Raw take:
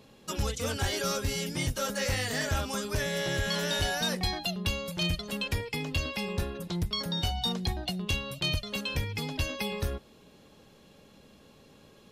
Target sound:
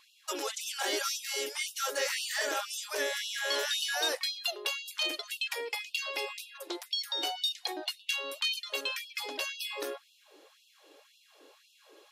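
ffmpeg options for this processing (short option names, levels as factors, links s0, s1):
-af "acontrast=54,lowshelf=f=170:t=q:w=3:g=-8,afftfilt=real='re*gte(b*sr/1024,260*pow(2600/260,0.5+0.5*sin(2*PI*1.9*pts/sr)))':imag='im*gte(b*sr/1024,260*pow(2600/260,0.5+0.5*sin(2*PI*1.9*pts/sr)))':win_size=1024:overlap=0.75,volume=0.531"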